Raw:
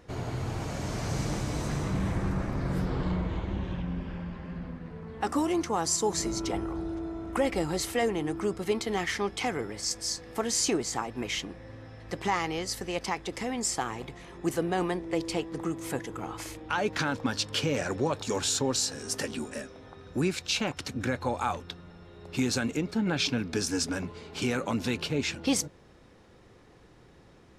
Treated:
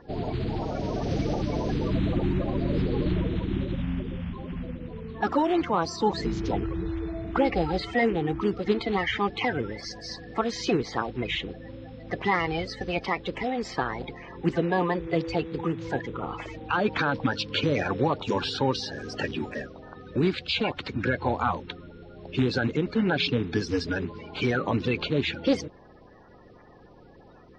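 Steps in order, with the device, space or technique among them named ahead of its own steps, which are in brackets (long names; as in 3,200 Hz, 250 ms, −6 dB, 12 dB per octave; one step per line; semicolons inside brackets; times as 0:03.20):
clip after many re-uploads (low-pass filter 4,000 Hz 24 dB per octave; spectral magnitudes quantised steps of 30 dB)
level +4.5 dB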